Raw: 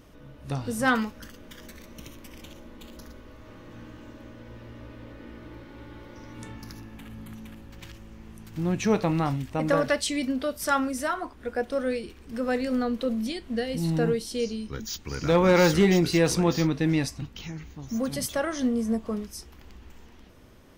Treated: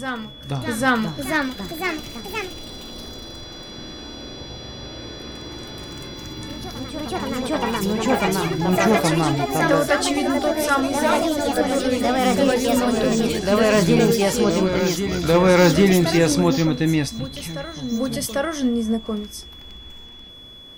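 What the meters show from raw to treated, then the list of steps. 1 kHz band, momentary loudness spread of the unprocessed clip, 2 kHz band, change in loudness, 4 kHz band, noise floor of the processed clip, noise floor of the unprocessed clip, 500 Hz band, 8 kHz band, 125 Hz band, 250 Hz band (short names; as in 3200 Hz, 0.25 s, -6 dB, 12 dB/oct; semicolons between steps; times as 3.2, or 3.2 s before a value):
+9.0 dB, 23 LU, +8.0 dB, +6.5 dB, +9.5 dB, -40 dBFS, -50 dBFS, +7.5 dB, +8.0 dB, +5.5 dB, +7.0 dB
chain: whine 3400 Hz -45 dBFS; reverse echo 0.797 s -9.5 dB; echoes that change speed 0.617 s, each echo +3 st, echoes 3; gain +4.5 dB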